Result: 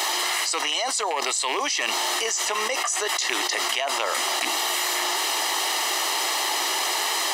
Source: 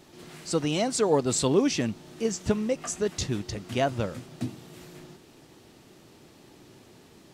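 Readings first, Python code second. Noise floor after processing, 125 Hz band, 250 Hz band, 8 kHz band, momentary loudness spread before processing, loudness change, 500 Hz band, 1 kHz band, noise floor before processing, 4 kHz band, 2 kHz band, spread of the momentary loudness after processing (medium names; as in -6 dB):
-27 dBFS, under -30 dB, -11.0 dB, +11.0 dB, 19 LU, +5.0 dB, -3.0 dB, +11.5 dB, -55 dBFS, +15.0 dB, +15.5 dB, 1 LU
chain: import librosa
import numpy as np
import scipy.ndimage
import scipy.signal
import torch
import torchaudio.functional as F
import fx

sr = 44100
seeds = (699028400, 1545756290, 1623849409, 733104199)

y = fx.rattle_buzz(x, sr, strikes_db=-27.0, level_db=-26.0)
y = scipy.signal.sosfilt(scipy.signal.bessel(8, 770.0, 'highpass', norm='mag', fs=sr, output='sos'), y)
y = y + 0.59 * np.pad(y, (int(1.0 * sr / 1000.0), 0))[:len(y)]
y = fx.env_flatten(y, sr, amount_pct=100)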